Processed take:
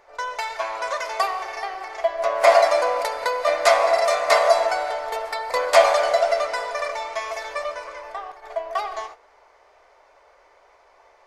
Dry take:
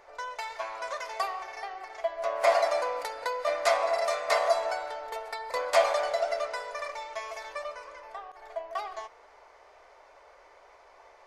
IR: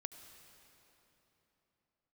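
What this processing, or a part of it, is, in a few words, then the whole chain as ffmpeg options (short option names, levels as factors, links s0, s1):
keyed gated reverb: -filter_complex "[0:a]asplit=3[s0][s1][s2];[1:a]atrim=start_sample=2205[s3];[s1][s3]afir=irnorm=-1:irlink=0[s4];[s2]apad=whole_len=496762[s5];[s4][s5]sidechaingate=range=0.0224:threshold=0.00447:ratio=16:detection=peak,volume=2.66[s6];[s0][s6]amix=inputs=2:normalize=0"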